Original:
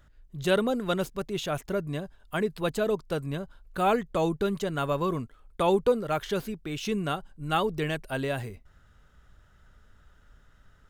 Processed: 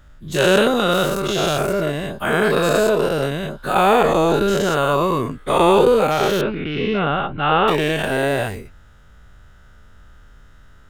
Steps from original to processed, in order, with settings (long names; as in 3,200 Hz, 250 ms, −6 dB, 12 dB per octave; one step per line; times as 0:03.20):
every bin's largest magnitude spread in time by 240 ms
0:06.41–0:07.68: inverse Chebyshev low-pass filter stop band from 7,300 Hz, stop band 50 dB
level +4.5 dB